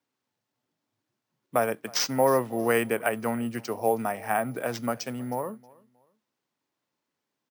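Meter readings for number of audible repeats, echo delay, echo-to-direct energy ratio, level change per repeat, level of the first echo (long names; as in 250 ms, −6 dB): 2, 316 ms, −23.5 dB, −11.0 dB, −24.0 dB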